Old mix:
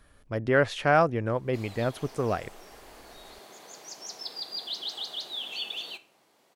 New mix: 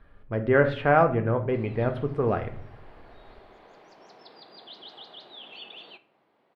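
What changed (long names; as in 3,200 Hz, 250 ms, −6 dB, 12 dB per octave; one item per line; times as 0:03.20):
speech: send on
master: add high-frequency loss of the air 440 metres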